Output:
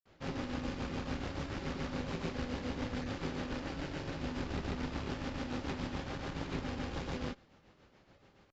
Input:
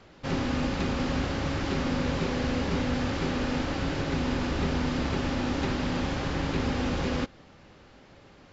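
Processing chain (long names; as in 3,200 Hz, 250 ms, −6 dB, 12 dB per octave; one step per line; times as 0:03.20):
granular cloud 239 ms, grains 7 per second, pitch spread up and down by 0 semitones
harmonic generator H 4 −18 dB, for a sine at −15.5 dBFS
level −8.5 dB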